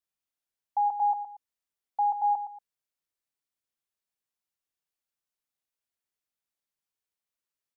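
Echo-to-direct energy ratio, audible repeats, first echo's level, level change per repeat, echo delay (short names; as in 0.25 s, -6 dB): -9.5 dB, 2, -10.0 dB, -10.5 dB, 0.116 s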